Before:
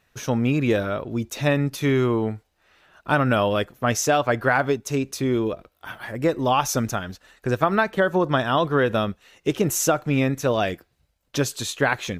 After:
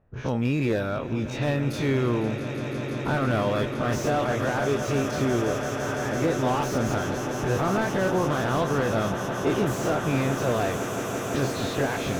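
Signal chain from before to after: spectral dilation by 60 ms; low-pass opened by the level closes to 750 Hz, open at -17 dBFS; low shelf 150 Hz +5 dB; in parallel at -0.5 dB: compressor, threshold -29 dBFS, peak gain reduction 17 dB; on the sum: limiter -7 dBFS, peak gain reduction 5.5 dB; on a send: swelling echo 0.168 s, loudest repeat 8, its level -14 dB; on the sum: slew limiter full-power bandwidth 200 Hz; gain -8 dB

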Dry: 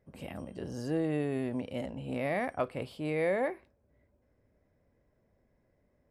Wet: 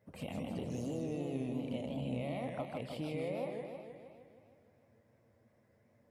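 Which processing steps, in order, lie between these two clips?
HPF 92 Hz; bell 370 Hz -6 dB 0.36 oct; compressor 10:1, threshold -41 dBFS, peak gain reduction 15 dB; envelope flanger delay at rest 10.2 ms, full sweep at -42 dBFS; warbling echo 0.156 s, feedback 63%, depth 193 cents, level -4 dB; gain +5 dB

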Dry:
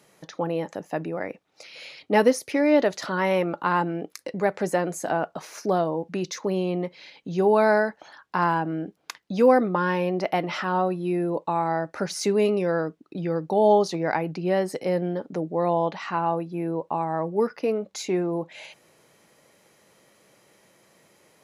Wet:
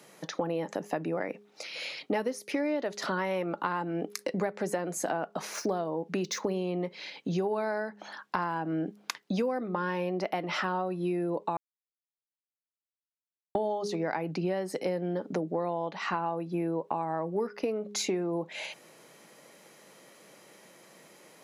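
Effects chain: 5.53–6.53 median filter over 3 samples; HPF 150 Hz 24 dB/oct; de-hum 206 Hz, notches 2; 11.57–13.55 mute; compressor 12:1, threshold -31 dBFS, peak gain reduction 19.5 dB; gain +4 dB

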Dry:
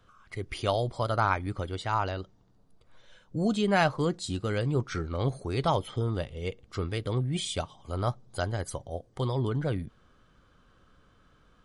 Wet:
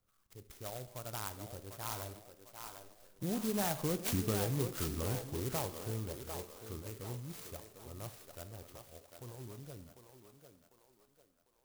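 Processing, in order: Doppler pass-by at 4.2, 13 m/s, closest 2.1 m; compressor 4:1, threshold -43 dBFS, peak gain reduction 13 dB; thinning echo 0.748 s, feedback 48%, high-pass 370 Hz, level -6 dB; Schroeder reverb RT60 0.68 s, combs from 28 ms, DRR 12 dB; clock jitter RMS 0.14 ms; gain +10 dB

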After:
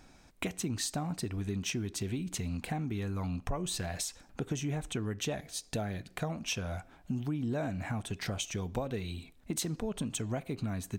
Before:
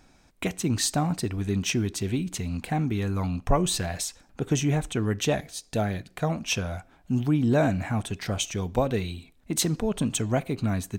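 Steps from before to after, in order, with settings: compressor 4:1, threshold -33 dBFS, peak gain reduction 14.5 dB

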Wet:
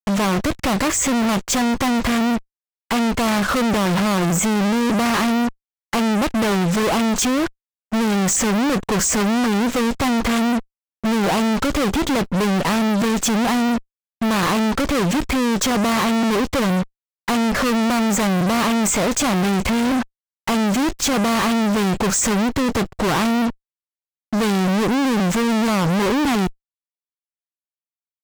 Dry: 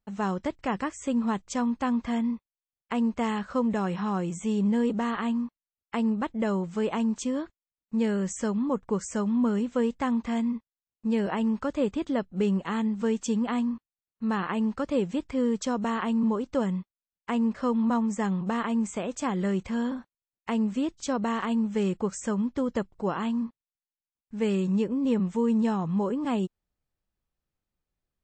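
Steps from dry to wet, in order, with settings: tube stage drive 26 dB, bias 0.55; fuzz box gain 53 dB, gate -56 dBFS; gain -4 dB

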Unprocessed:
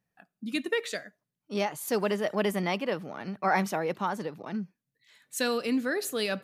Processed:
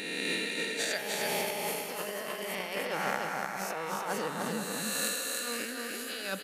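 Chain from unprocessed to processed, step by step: spectral swells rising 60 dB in 2.27 s; tilt +2 dB/oct; negative-ratio compressor -29 dBFS, ratio -0.5; on a send: tapped delay 0.301/0.491 s -3.5/-9.5 dB; on the sum: gain -6 dB

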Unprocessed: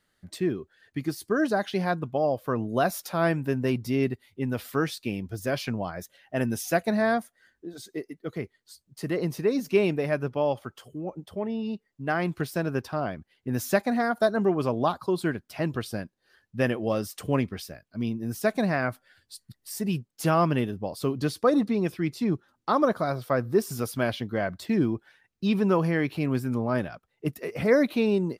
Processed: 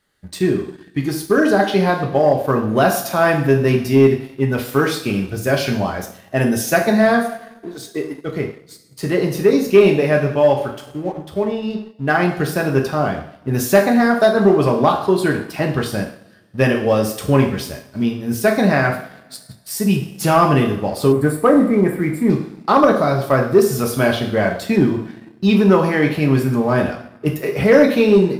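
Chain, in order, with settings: two-slope reverb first 0.6 s, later 1.9 s, DRR 1 dB; spectral gain 21.12–22.3, 2400–7100 Hz -20 dB; sample leveller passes 1; gain +5 dB

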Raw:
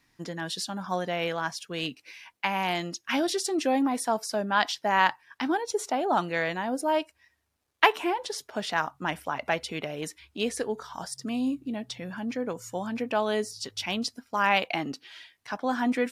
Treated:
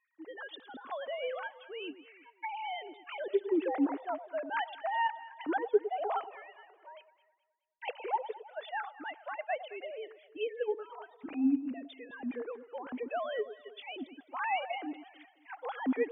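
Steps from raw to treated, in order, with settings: sine-wave speech; 6.24–7.88 differentiator; on a send: echo with dull and thin repeats by turns 0.106 s, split 900 Hz, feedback 61%, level -12 dB; on the sum: gain -7 dB

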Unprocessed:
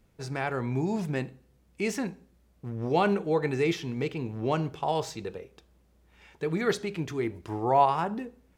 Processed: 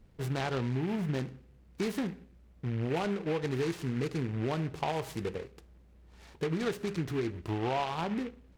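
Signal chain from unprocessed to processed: tilt -1.5 dB/oct; compressor 10:1, threshold -28 dBFS, peak gain reduction 13 dB; noise-modulated delay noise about 1700 Hz, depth 0.074 ms

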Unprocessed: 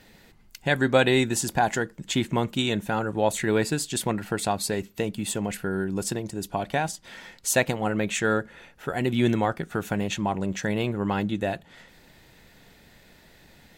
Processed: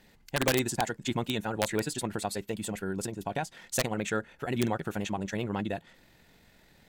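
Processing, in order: tempo 2×; wrapped overs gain 11.5 dB; gain -5.5 dB

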